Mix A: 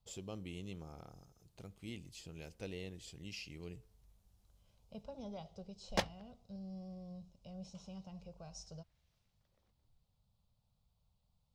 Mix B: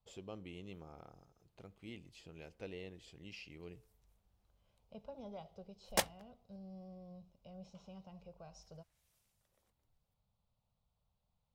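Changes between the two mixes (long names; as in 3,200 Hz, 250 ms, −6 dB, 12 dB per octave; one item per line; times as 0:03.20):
background: remove high-frequency loss of the air 250 metres
master: add bass and treble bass −6 dB, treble −12 dB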